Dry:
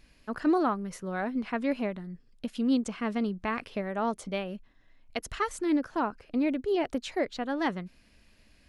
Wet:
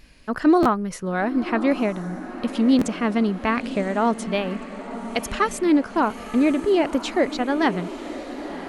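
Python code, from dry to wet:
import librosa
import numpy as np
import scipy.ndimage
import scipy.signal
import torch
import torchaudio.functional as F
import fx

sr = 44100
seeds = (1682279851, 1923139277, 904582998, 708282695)

y = fx.wow_flutter(x, sr, seeds[0], rate_hz=2.1, depth_cents=35.0)
y = fx.echo_diffused(y, sr, ms=1013, feedback_pct=58, wet_db=-12.5)
y = fx.buffer_glitch(y, sr, at_s=(0.62, 2.78), block=512, repeats=2)
y = F.gain(torch.from_numpy(y), 8.5).numpy()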